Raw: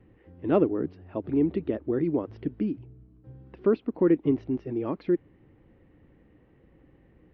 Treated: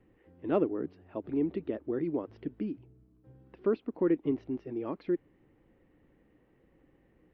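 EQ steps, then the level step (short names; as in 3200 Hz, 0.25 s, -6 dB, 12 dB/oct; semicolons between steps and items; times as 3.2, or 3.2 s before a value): bell 85 Hz -7 dB 2.1 oct; -4.5 dB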